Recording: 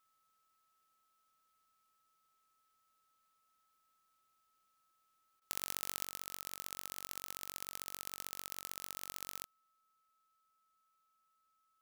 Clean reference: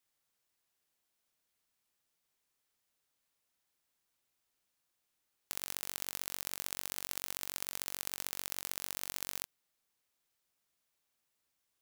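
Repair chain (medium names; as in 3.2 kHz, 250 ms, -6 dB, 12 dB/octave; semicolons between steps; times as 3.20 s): band-stop 1.3 kHz, Q 30; interpolate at 5.40 s, 15 ms; trim 0 dB, from 6.05 s +5 dB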